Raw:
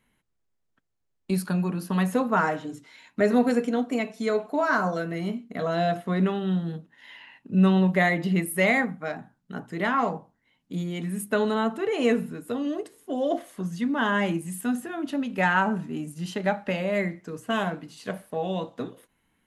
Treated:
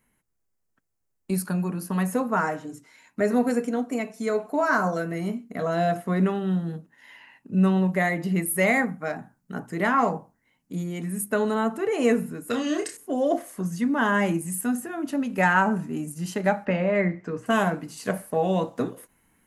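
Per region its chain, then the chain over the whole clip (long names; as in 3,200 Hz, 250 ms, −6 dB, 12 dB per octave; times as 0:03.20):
0:12.50–0:12.97: flat-topped bell 3,500 Hz +13 dB 2.8 octaves + double-tracking delay 30 ms −5.5 dB
0:16.65–0:17.46: low-pass filter 2,800 Hz + double-tracking delay 17 ms −12 dB + one half of a high-frequency compander encoder only
whole clip: parametric band 3,500 Hz −10 dB 0.75 octaves; speech leveller 2 s; high-shelf EQ 4,900 Hz +7.5 dB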